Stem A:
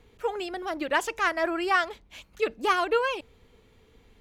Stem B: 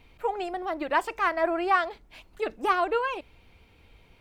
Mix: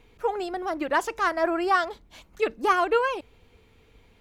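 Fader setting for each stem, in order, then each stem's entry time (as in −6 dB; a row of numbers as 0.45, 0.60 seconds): −1.5, −4.5 decibels; 0.00, 0.00 seconds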